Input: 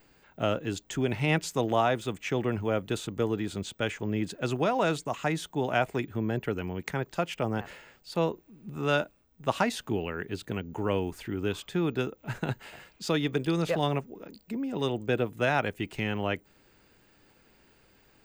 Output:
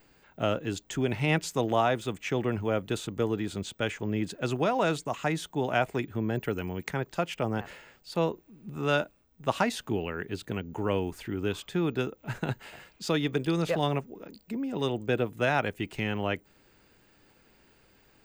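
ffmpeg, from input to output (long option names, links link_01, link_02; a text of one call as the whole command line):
ffmpeg -i in.wav -filter_complex "[0:a]asettb=1/sr,asplit=3[link_01][link_02][link_03];[link_01]atrim=end=6.354[link_04];[link_02]atrim=start=6.35:end=6.84,asetpts=PTS-STARTPTS,afade=type=in:duration=0.004:curve=qsin,afade=type=out:start_time=0.486:duration=0.004:curve=qsin,highshelf=frequency=7100:gain=8[link_05];[link_03]atrim=start=6.836[link_06];[link_04][link_05]acrossfade=duration=0.004:curve1=hsin:curve2=qsin[link_07];[link_07][link_06]acrossfade=duration=0.004:curve1=qsin:curve2=hsin" out.wav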